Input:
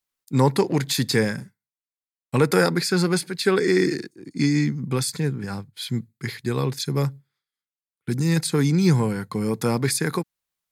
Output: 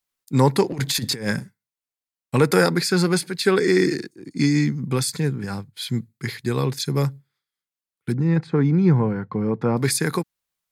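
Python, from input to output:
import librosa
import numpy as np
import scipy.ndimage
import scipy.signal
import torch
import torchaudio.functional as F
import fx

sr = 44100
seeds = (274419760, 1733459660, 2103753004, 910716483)

y = fx.over_compress(x, sr, threshold_db=-25.0, ratio=-0.5, at=(0.72, 1.39))
y = fx.lowpass(y, sr, hz=1500.0, slope=12, at=(8.11, 9.76), fade=0.02)
y = y * 10.0 ** (1.5 / 20.0)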